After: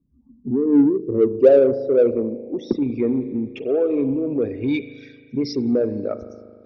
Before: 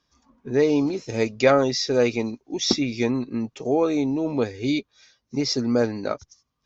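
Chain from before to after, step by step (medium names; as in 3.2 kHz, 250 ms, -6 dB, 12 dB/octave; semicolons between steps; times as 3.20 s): resonances exaggerated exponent 2; dynamic bell 1.3 kHz, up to -6 dB, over -37 dBFS, Q 0.76; low-pass sweep 240 Hz -> 2.6 kHz, 0.50–3.74 s; spring tank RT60 1.9 s, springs 38 ms, chirp 70 ms, DRR 10.5 dB; in parallel at -8 dB: saturation -20 dBFS, distortion -7 dB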